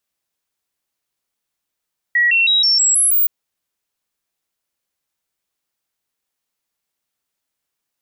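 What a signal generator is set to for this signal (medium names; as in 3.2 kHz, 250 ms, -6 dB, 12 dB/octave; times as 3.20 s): stepped sine 1.92 kHz up, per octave 2, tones 7, 0.16 s, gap 0.00 s -11 dBFS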